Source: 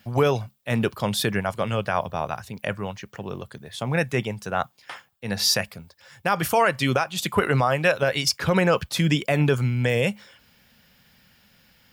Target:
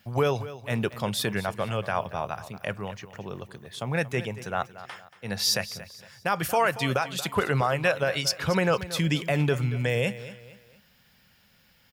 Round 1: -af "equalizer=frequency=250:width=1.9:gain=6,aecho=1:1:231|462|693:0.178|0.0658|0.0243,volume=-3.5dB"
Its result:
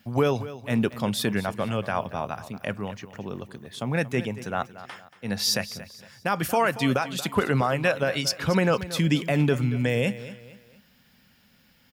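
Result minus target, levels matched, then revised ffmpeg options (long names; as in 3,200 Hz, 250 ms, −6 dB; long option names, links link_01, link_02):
250 Hz band +4.0 dB
-af "equalizer=frequency=250:width=1.9:gain=-2.5,aecho=1:1:231|462|693:0.178|0.0658|0.0243,volume=-3.5dB"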